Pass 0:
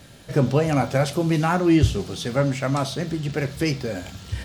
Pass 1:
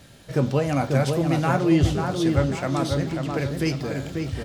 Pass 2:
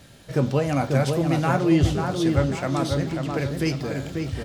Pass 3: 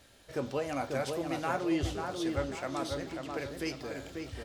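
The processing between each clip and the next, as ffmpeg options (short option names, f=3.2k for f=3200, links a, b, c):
-filter_complex "[0:a]asplit=2[a][b];[b]adelay=541,lowpass=f=1.6k:p=1,volume=-3.5dB,asplit=2[c][d];[d]adelay=541,lowpass=f=1.6k:p=1,volume=0.47,asplit=2[e][f];[f]adelay=541,lowpass=f=1.6k:p=1,volume=0.47,asplit=2[g][h];[h]adelay=541,lowpass=f=1.6k:p=1,volume=0.47,asplit=2[i][j];[j]adelay=541,lowpass=f=1.6k:p=1,volume=0.47,asplit=2[k][l];[l]adelay=541,lowpass=f=1.6k:p=1,volume=0.47[m];[a][c][e][g][i][k][m]amix=inputs=7:normalize=0,volume=-2.5dB"
-af anull
-af "equalizer=f=150:t=o:w=1.1:g=-14,volume=-8dB"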